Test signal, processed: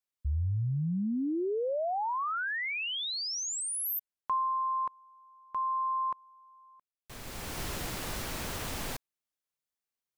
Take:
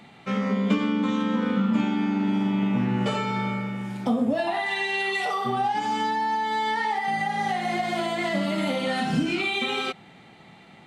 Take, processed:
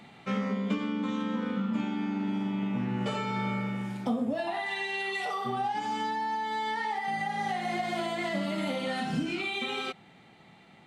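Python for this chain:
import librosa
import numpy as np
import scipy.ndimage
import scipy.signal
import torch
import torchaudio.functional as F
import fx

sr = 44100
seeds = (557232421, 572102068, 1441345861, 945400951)

y = fx.rider(x, sr, range_db=5, speed_s=0.5)
y = y * 10.0 ** (-6.0 / 20.0)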